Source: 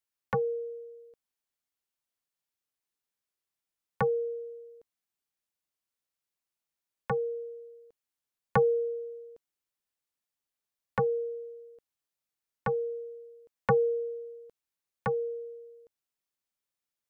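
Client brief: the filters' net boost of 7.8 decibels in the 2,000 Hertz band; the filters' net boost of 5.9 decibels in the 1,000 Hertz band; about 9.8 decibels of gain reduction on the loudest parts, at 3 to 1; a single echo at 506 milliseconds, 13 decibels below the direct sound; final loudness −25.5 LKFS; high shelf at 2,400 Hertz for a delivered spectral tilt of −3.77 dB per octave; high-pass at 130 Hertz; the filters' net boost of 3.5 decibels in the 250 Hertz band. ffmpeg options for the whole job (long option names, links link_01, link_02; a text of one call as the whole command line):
ffmpeg -i in.wav -af "highpass=130,equalizer=frequency=250:width_type=o:gain=6.5,equalizer=frequency=1000:width_type=o:gain=5,equalizer=frequency=2000:width_type=o:gain=6.5,highshelf=frequency=2400:gain=4.5,acompressor=threshold=-29dB:ratio=3,aecho=1:1:506:0.224,volume=9.5dB" out.wav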